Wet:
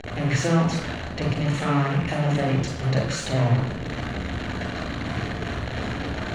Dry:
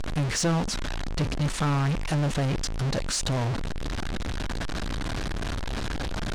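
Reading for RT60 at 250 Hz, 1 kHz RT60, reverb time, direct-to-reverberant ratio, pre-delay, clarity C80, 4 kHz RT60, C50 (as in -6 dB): 0.75 s, 0.85 s, 0.85 s, 0.0 dB, 37 ms, 7.5 dB, 0.65 s, 3.5 dB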